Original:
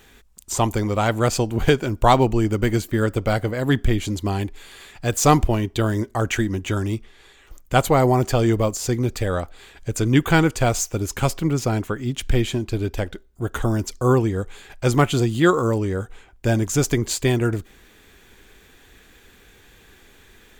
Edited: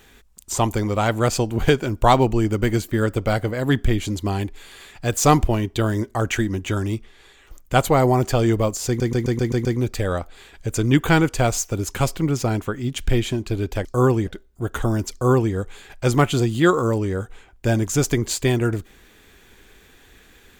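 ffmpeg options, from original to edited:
-filter_complex "[0:a]asplit=9[s0][s1][s2][s3][s4][s5][s6][s7][s8];[s0]atrim=end=9.002[s9];[s1]atrim=start=8.868:end=9.002[s10];[s2]atrim=start=8.868:end=9.002[s11];[s3]atrim=start=8.868:end=9.002[s12];[s4]atrim=start=8.868:end=9.002[s13];[s5]atrim=start=8.868:end=9.002[s14];[s6]atrim=start=8.868:end=13.072[s15];[s7]atrim=start=13.918:end=14.342[s16];[s8]atrim=start=13.068[s17];[s9][s10]acrossfade=d=0.004:c1=hsin:c2=hsin[s18];[s18][s11]acrossfade=d=0.004:c1=hsin:c2=hsin[s19];[s19][s12]acrossfade=d=0.004:c1=hsin:c2=hsin[s20];[s20][s13]acrossfade=d=0.004:c1=hsin:c2=hsin[s21];[s21][s14]acrossfade=d=0.004:c1=hsin:c2=hsin[s22];[s22][s15]acrossfade=d=0.004:c1=hsin:c2=hsin[s23];[s23][s16]acrossfade=d=0.004:c1=hsin:c2=hsin[s24];[s24][s17]acrossfade=d=0.004:c1=hsin:c2=hsin"

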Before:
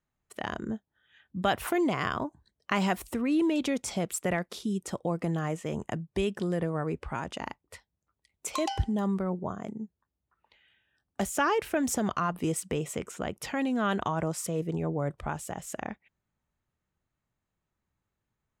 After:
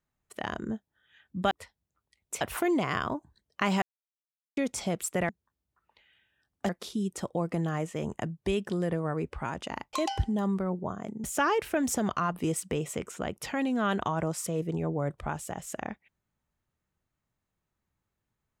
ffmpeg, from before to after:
-filter_complex "[0:a]asplit=9[s0][s1][s2][s3][s4][s5][s6][s7][s8];[s0]atrim=end=1.512[s9];[s1]atrim=start=7.628:end=8.532[s10];[s2]atrim=start=1.508:end=2.92,asetpts=PTS-STARTPTS,afade=t=out:st=1.408:d=0.004:c=hsin[s11];[s3]atrim=start=2.92:end=3.67,asetpts=PTS-STARTPTS,volume=0[s12];[s4]atrim=start=3.67:end=4.392,asetpts=PTS-STARTPTS,afade=t=in:d=0.004:c=hsin[s13];[s5]atrim=start=9.838:end=11.242[s14];[s6]atrim=start=4.388:end=7.632[s15];[s7]atrim=start=8.528:end=9.842[s16];[s8]atrim=start=11.238[s17];[s9][s10]acrossfade=d=0.004:c1=hsin:c2=hsin[s18];[s11][s12][s13]concat=n=3:v=0:a=1[s19];[s18][s19]acrossfade=d=0.004:c1=hsin:c2=hsin[s20];[s20][s14]acrossfade=d=0.004:c1=hsin:c2=hsin[s21];[s21][s15]acrossfade=d=0.004:c1=hsin:c2=hsin[s22];[s22][s16]acrossfade=d=0.004:c1=hsin:c2=hsin[s23];[s23][s17]acrossfade=d=0.004:c1=hsin:c2=hsin"

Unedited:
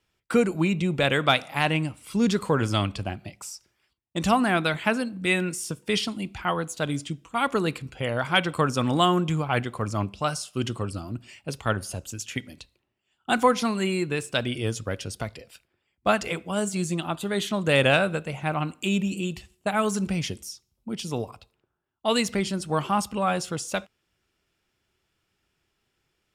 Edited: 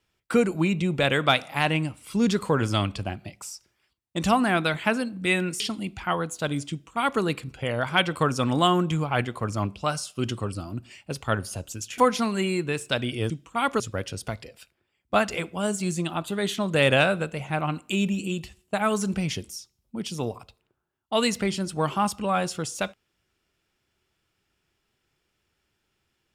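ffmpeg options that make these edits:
-filter_complex "[0:a]asplit=5[s0][s1][s2][s3][s4];[s0]atrim=end=5.602[s5];[s1]atrim=start=5.978:end=12.362[s6];[s2]atrim=start=13.408:end=14.732[s7];[s3]atrim=start=7.088:end=7.592[s8];[s4]atrim=start=14.728[s9];[s5][s6]acrossfade=d=0.004:c1=hsin:c2=hsin[s10];[s10][s7]acrossfade=d=0.004:c1=hsin:c2=hsin[s11];[s11][s8]acrossfade=d=0.004:c1=hsin:c2=hsin[s12];[s12][s9]acrossfade=d=0.004:c1=hsin:c2=hsin"

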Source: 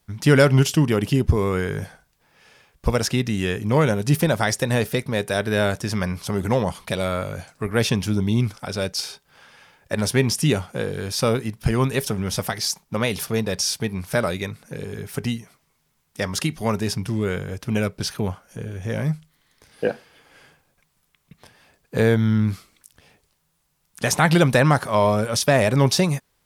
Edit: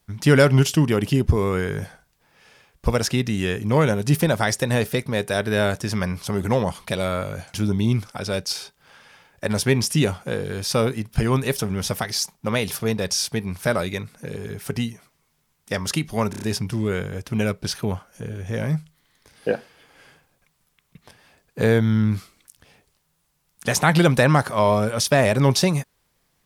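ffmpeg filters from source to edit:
-filter_complex "[0:a]asplit=6[s0][s1][s2][s3][s4][s5];[s0]atrim=end=7.542[s6];[s1]atrim=start=8.018:end=16.812[s7];[s2]atrim=start=16.778:end=16.812[s8];[s3]atrim=start=16.778:end=16.812[s9];[s4]atrim=start=16.778:end=16.812[s10];[s5]atrim=start=16.778[s11];[s6][s7]acrossfade=d=0.004:c1=hsin:c2=hsin[s12];[s12][s8]acrossfade=d=0.004:c1=hsin:c2=hsin[s13];[s13][s9]acrossfade=d=0.004:c1=hsin:c2=hsin[s14];[s14][s10]acrossfade=d=0.004:c1=hsin:c2=hsin[s15];[s15][s11]acrossfade=d=0.004:c1=hsin:c2=hsin"

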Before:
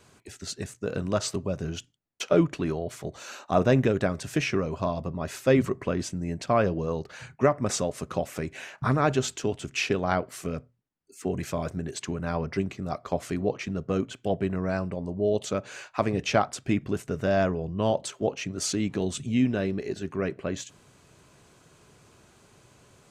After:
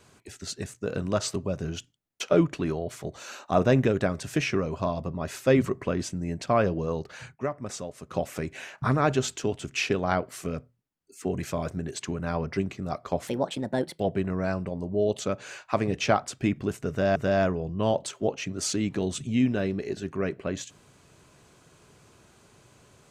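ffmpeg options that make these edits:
-filter_complex "[0:a]asplit=6[s0][s1][s2][s3][s4][s5];[s0]atrim=end=7.56,asetpts=PTS-STARTPTS,afade=t=out:st=7.29:d=0.27:c=exp:silence=0.375837[s6];[s1]atrim=start=7.56:end=7.88,asetpts=PTS-STARTPTS,volume=0.376[s7];[s2]atrim=start=7.88:end=13.274,asetpts=PTS-STARTPTS,afade=t=in:d=0.27:c=exp:silence=0.375837[s8];[s3]atrim=start=13.27:end=14.25,asetpts=PTS-STARTPTS,asetrate=59535,aresample=44100,atrim=end_sample=32013,asetpts=PTS-STARTPTS[s9];[s4]atrim=start=14.246:end=17.412[s10];[s5]atrim=start=17.148[s11];[s6][s7][s8]concat=n=3:v=0:a=1[s12];[s12][s9]acrossfade=d=0.004:c1=hsin:c2=hsin[s13];[s13][s10]acrossfade=d=0.004:c1=hsin:c2=hsin[s14];[s14][s11]acrossfade=d=0.004:c1=hsin:c2=hsin"

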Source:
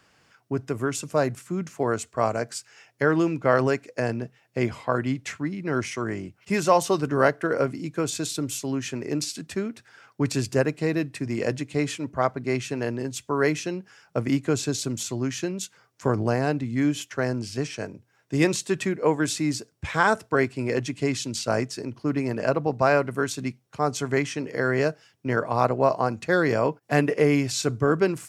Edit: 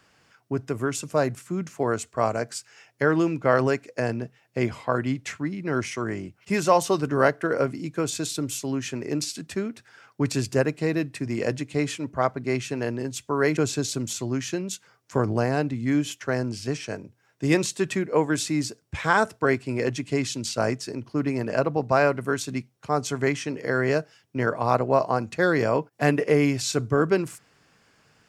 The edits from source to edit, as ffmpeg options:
-filter_complex "[0:a]asplit=2[s0][s1];[s0]atrim=end=13.572[s2];[s1]atrim=start=14.468[s3];[s2][s3]acrossfade=d=0.004:c1=hsin:c2=hsin"

